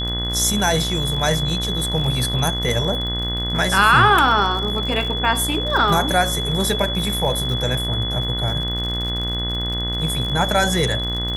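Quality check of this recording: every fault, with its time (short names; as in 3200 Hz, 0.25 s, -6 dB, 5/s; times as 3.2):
buzz 60 Hz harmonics 35 -26 dBFS
crackle 57/s -26 dBFS
tone 3400 Hz -24 dBFS
2.69 gap 3.6 ms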